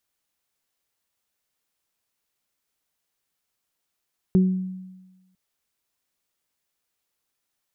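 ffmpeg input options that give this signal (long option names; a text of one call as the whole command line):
ffmpeg -f lavfi -i "aevalsrc='0.237*pow(10,-3*t/1.18)*sin(2*PI*186*t)+0.0891*pow(10,-3*t/0.43)*sin(2*PI*372*t)':duration=1:sample_rate=44100" out.wav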